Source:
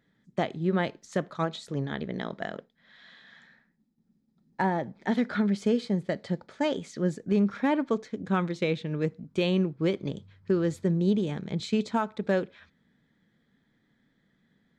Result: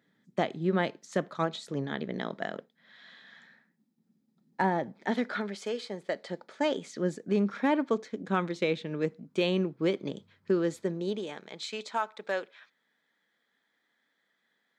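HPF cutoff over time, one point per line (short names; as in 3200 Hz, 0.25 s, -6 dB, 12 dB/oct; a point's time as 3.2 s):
4.83 s 170 Hz
5.7 s 600 Hz
6.9 s 220 Hz
10.55 s 220 Hz
11.56 s 670 Hz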